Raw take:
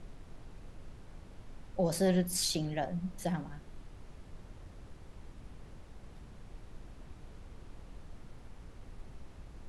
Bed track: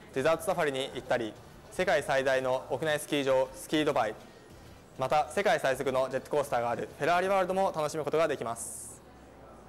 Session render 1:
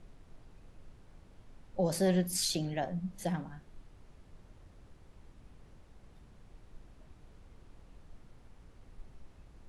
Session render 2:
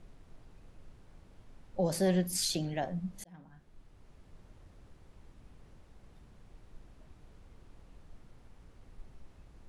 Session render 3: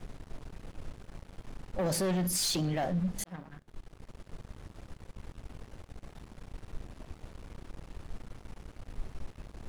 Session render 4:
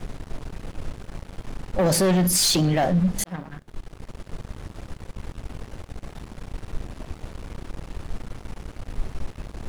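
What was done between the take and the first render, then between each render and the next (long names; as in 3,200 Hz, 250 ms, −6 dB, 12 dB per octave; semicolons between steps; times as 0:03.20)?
noise reduction from a noise print 6 dB
0:03.24–0:04.53: fade in equal-power
leveller curve on the samples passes 3; brickwall limiter −25.5 dBFS, peak gain reduction 8 dB
level +10.5 dB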